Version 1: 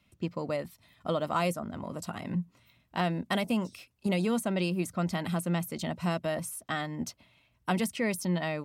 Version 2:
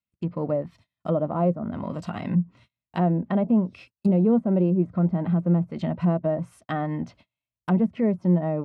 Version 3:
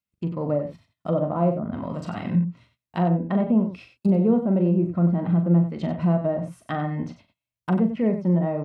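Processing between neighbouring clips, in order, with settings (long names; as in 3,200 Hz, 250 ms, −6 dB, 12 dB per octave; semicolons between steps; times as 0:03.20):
treble cut that deepens with the level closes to 690 Hz, closed at −27.5 dBFS; harmonic and percussive parts rebalanced harmonic +8 dB; noise gate −50 dBFS, range −34 dB; level +1.5 dB
loudspeakers that aren't time-aligned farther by 14 metres −8 dB, 32 metres −10 dB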